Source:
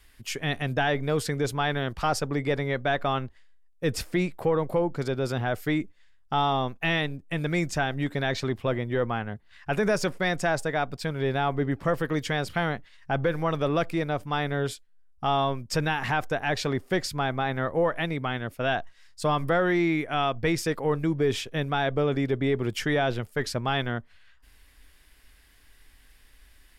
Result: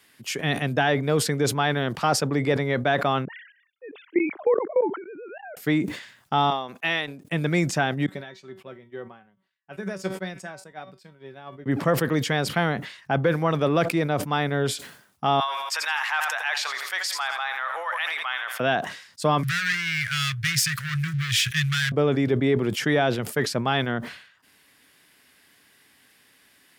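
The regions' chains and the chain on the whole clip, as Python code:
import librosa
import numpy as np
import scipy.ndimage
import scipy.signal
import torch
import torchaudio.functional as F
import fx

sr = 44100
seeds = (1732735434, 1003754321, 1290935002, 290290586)

y = fx.chain(x, sr, fx.sine_speech(),
    fx.level_steps(step_db=21), at=(3.25, 5.57))
y = fx.chain(y, sr, fx.highpass(hz=660.0, slope=6),
    fx.upward_expand(threshold_db=-39.0, expansion=2.5), at=(6.5, 7.25))
y = fx.chain(y, sr, fx.comb_fb(f0_hz=190.0, decay_s=0.19, harmonics='all', damping=0.0, mix_pct=80),
    fx.upward_expand(threshold_db=-51.0, expansion=2.5), at=(8.06, 11.66))
y = fx.chain(y, sr, fx.highpass(hz=990.0, slope=24),
    fx.echo_feedback(ms=84, feedback_pct=41, wet_db=-13.5),
    fx.sustainer(db_per_s=23.0), at=(15.4, 18.6))
y = fx.chain(y, sr, fx.leveller(passes=3),
    fx.ellip_bandstop(low_hz=130.0, high_hz=1600.0, order=3, stop_db=40), at=(19.43, 21.92))
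y = scipy.signal.sosfilt(scipy.signal.butter(4, 140.0, 'highpass', fs=sr, output='sos'), y)
y = fx.low_shelf(y, sr, hz=180.0, db=3.5)
y = fx.sustainer(y, sr, db_per_s=92.0)
y = y * librosa.db_to_amplitude(3.0)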